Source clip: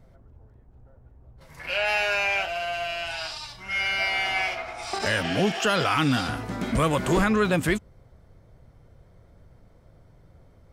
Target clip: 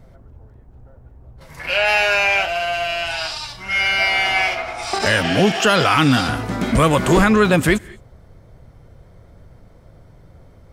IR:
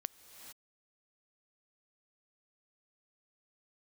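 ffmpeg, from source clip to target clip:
-filter_complex "[0:a]asplit=2[a][b];[1:a]atrim=start_sample=2205,afade=t=out:st=0.43:d=0.01,atrim=end_sample=19404,asetrate=74970,aresample=44100[c];[b][c]afir=irnorm=-1:irlink=0,volume=0dB[d];[a][d]amix=inputs=2:normalize=0,volume=5dB"

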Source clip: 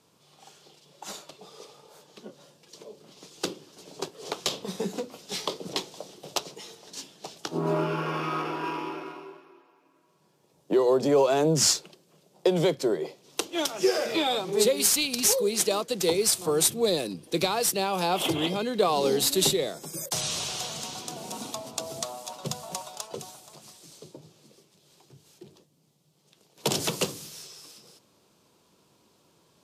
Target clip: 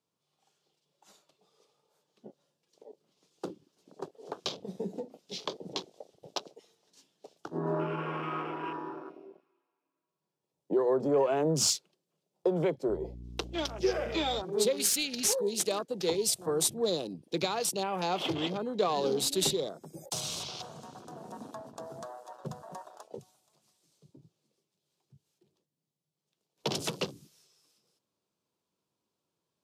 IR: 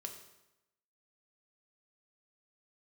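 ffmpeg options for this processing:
-filter_complex "[0:a]asettb=1/sr,asplit=3[a][b][c];[a]atrim=end=12.894[d];[b]atrim=start=12.89:end=14.42,asetpts=PTS-STARTPTS,afade=t=in:d=0.004:c=qsin,afade=t=out:st=1.526:d=0.004:c=qsin,aeval=exprs='val(0)+0.0126*(sin(2*PI*60*n/s)+sin(2*PI*2*60*n/s)/2+sin(2*PI*3*60*n/s)/3+sin(2*PI*4*60*n/s)/4+sin(2*PI*5*60*n/s)/5)':c=same[e];[c]atrim=start=14.416[f];[d][e]acrossfade=d=0.004:c1=hsin:c2=qsin[g];[g][f]acrossfade=d=0.004:c1=qsin:c2=hsin,afwtdn=0.0158,volume=-5dB"

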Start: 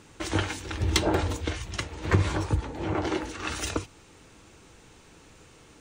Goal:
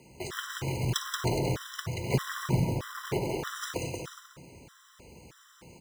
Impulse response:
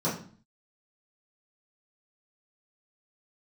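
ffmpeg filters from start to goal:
-filter_complex "[0:a]lowshelf=f=68:g=4.5,bandreject=f=60:t=h:w=6,bandreject=f=120:t=h:w=6,bandreject=f=180:t=h:w=6,bandreject=f=240:t=h:w=6,bandreject=f=300:t=h:w=6,asplit=2[a][b];[b]acompressor=threshold=-35dB:ratio=6,volume=-1dB[c];[a][c]amix=inputs=2:normalize=0,aeval=exprs='0.631*(cos(1*acos(clip(val(0)/0.631,-1,1)))-cos(1*PI/2))+0.0126*(cos(3*acos(clip(val(0)/0.631,-1,1)))-cos(3*PI/2))+0.0158*(cos(7*acos(clip(val(0)/0.631,-1,1)))-cos(7*PI/2))+0.0224*(cos(8*acos(clip(val(0)/0.631,-1,1)))-cos(8*PI/2))':c=same,afreqshift=39,acrusher=bits=2:mode=log:mix=0:aa=0.000001,aecho=1:1:180|315|416.2|492.2|549.1:0.631|0.398|0.251|0.158|0.1,asplit=2[d][e];[1:a]atrim=start_sample=2205,adelay=53[f];[e][f]afir=irnorm=-1:irlink=0,volume=-18dB[g];[d][g]amix=inputs=2:normalize=0,afftfilt=real='re*gt(sin(2*PI*1.6*pts/sr)*(1-2*mod(floor(b*sr/1024/1000),2)),0)':imag='im*gt(sin(2*PI*1.6*pts/sr)*(1-2*mod(floor(b*sr/1024/1000),2)),0)':win_size=1024:overlap=0.75,volume=-5dB"

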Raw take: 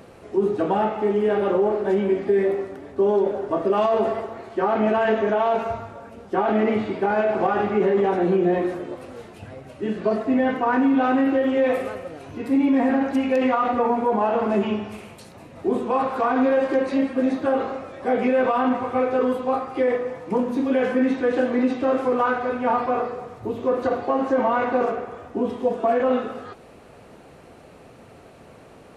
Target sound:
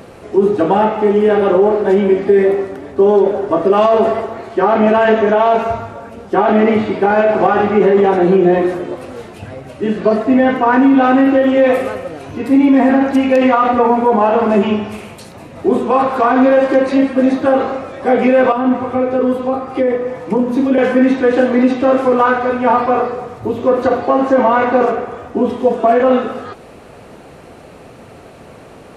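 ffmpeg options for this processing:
-filter_complex "[0:a]asettb=1/sr,asplit=3[a][b][c];[a]atrim=end=18.524[d];[b]atrim=start=18.52:end=20.78,asetpts=PTS-STARTPTS,afade=t=in:d=0.004:c=qsin,afade=t=out:st=2.256:d=0.004:c=qsin,acrossover=split=480[e][f];[f]acompressor=threshold=-33dB:ratio=2.5[g];[e][g]amix=inputs=2:normalize=0[h];[c]atrim=start=20.776[i];[d][h]acrossfade=d=0.004:c1=hsin:c2=qsin[j];[j][i]acrossfade=d=0.004:c1=qsin:c2=hsin,volume=9dB"

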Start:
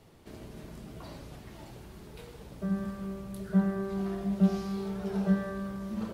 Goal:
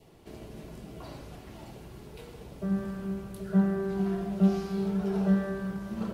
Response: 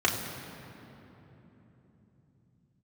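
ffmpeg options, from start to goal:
-filter_complex "[0:a]adynamicequalizer=threshold=0.00141:dfrequency=1400:dqfactor=2.6:tfrequency=1400:tqfactor=2.6:attack=5:release=100:ratio=0.375:range=2:mode=boostabove:tftype=bell,asplit=2[a][b];[1:a]atrim=start_sample=2205,lowpass=2.5k[c];[b][c]afir=irnorm=-1:irlink=0,volume=-19dB[d];[a][d]amix=inputs=2:normalize=0"

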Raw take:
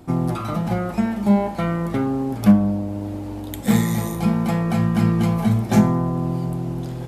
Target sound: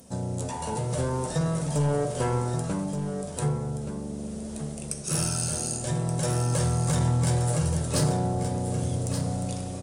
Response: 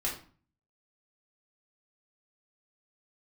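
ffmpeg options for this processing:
-filter_complex "[0:a]aemphasis=mode=production:type=bsi,dynaudnorm=f=420:g=3:m=11.5dB,equalizer=f=3k:t=o:w=1.8:g=-6,asplit=2[a][b];[b]acompressor=threshold=-30dB:ratio=6,volume=-1dB[c];[a][c]amix=inputs=2:normalize=0,asoftclip=type=tanh:threshold=-11dB,asetrate=31752,aresample=44100,aecho=1:1:1176:0.376,asplit=2[d][e];[1:a]atrim=start_sample=2205[f];[e][f]afir=irnorm=-1:irlink=0,volume=-15.5dB[g];[d][g]amix=inputs=2:normalize=0,volume=-9dB"

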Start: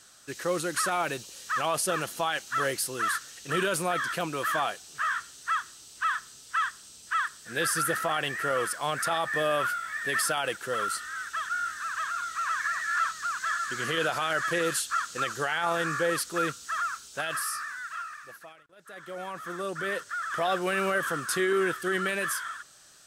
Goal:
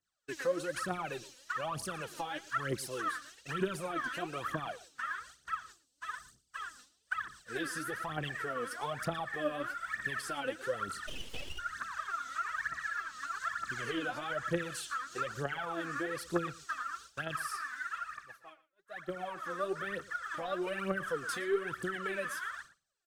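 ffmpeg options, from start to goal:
-filter_complex "[0:a]lowpass=f=3.5k:p=1,agate=range=-33dB:threshold=-42dB:ratio=3:detection=peak,asettb=1/sr,asplit=3[a][b][c];[a]atrim=end=5.724[d];[b]atrim=start=5.72:end=6.79,asetpts=PTS-STARTPTS,afade=t=in:d=0.004:c=qsin,afade=t=out:st=1.066:d=0.004:c=qsin,equalizer=f=1.6k:t=o:w=2.7:g=-12[e];[c]atrim=start=6.786[f];[d][e]acrossfade=d=0.004:c1=hsin:c2=qsin[g];[g][f]acrossfade=d=0.004:c1=qsin:c2=hsin,acrossover=split=350[h][i];[h]alimiter=level_in=11dB:limit=-24dB:level=0:latency=1,volume=-11dB[j];[i]acompressor=threshold=-36dB:ratio=6[k];[j][k]amix=inputs=2:normalize=0,aphaser=in_gain=1:out_gain=1:delay=4.1:decay=0.76:speed=1.1:type=triangular,asplit=3[l][m][n];[l]afade=t=out:st=11.06:d=0.02[o];[m]aeval=exprs='abs(val(0))':c=same,afade=t=in:st=11.06:d=0.02,afade=t=out:st=11.58:d=0.02[p];[n]afade=t=in:st=11.58:d=0.02[q];[o][p][q]amix=inputs=3:normalize=0,asplit=2[r][s];[s]aecho=0:1:115:0.119[t];[r][t]amix=inputs=2:normalize=0,volume=-3.5dB"

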